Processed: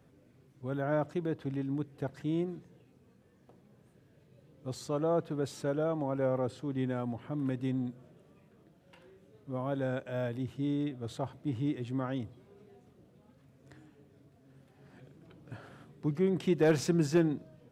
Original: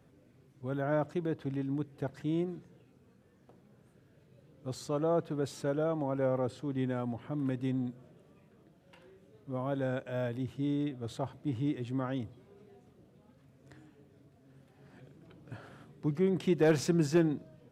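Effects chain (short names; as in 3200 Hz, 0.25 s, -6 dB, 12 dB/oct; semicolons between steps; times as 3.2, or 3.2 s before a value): 2.58–4.82 notch 1400 Hz, Q 12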